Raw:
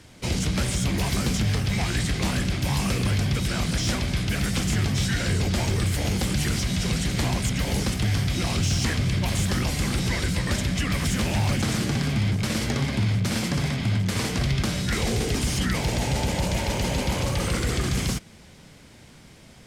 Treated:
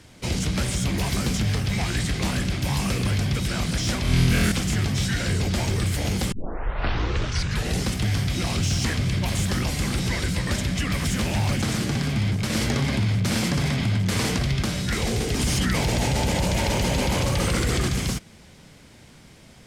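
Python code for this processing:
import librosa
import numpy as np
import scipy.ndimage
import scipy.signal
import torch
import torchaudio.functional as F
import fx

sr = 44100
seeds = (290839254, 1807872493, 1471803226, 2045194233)

y = fx.room_flutter(x, sr, wall_m=4.1, rt60_s=0.87, at=(4.02, 4.52))
y = fx.env_flatten(y, sr, amount_pct=50, at=(12.53, 14.37))
y = fx.env_flatten(y, sr, amount_pct=70, at=(15.39, 17.88))
y = fx.edit(y, sr, fx.tape_start(start_s=6.32, length_s=1.57), tone=tone)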